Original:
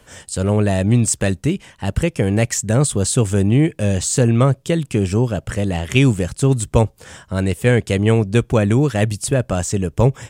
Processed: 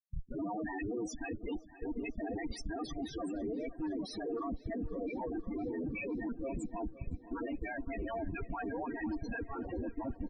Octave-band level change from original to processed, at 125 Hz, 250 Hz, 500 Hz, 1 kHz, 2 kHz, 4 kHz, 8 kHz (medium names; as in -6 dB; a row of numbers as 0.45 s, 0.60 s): -32.0 dB, -18.5 dB, -21.0 dB, -14.5 dB, -18.0 dB, -24.0 dB, -32.5 dB